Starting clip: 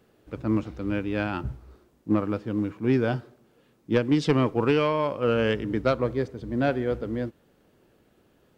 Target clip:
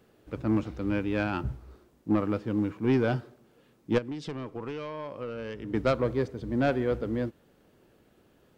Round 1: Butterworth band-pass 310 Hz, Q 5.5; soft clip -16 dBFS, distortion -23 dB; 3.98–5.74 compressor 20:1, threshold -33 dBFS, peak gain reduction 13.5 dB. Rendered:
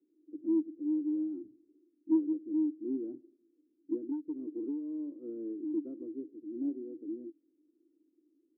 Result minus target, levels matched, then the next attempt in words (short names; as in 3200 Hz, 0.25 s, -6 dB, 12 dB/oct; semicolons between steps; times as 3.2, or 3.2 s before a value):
250 Hz band +2.5 dB
soft clip -16 dBFS, distortion -17 dB; 3.98–5.74 compressor 20:1, threshold -33 dBFS, peak gain reduction 14 dB